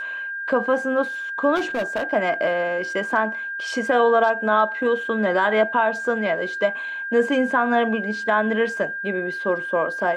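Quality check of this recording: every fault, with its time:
tone 1600 Hz -27 dBFS
1.55–2.04 clipped -19.5 dBFS

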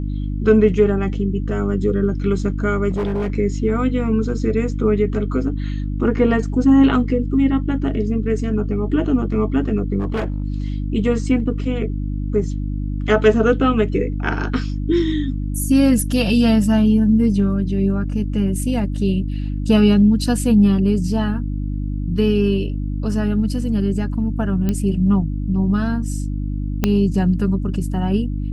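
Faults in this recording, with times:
hum 50 Hz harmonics 6 -23 dBFS
2.9–3.32 clipped -17.5 dBFS
9.99–10.44 clipped -17.5 dBFS
24.69 pop -9 dBFS
26.84 pop -3 dBFS

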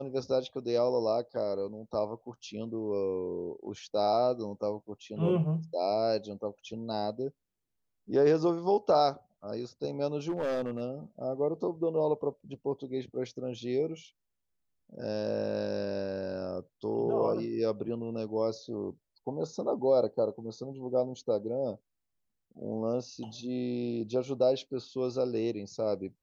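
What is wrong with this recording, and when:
10.28–10.82 clipped -27 dBFS

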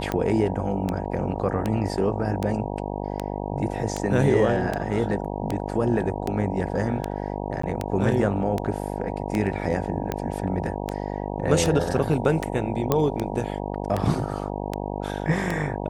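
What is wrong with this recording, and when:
buzz 50 Hz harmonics 19 -30 dBFS
tick 78 rpm -12 dBFS
7.62–7.63 gap 14 ms
12.92 pop -7 dBFS

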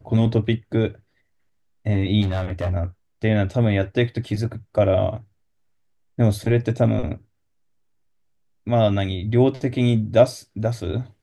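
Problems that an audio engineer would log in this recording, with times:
2.21–2.75 clipped -19 dBFS

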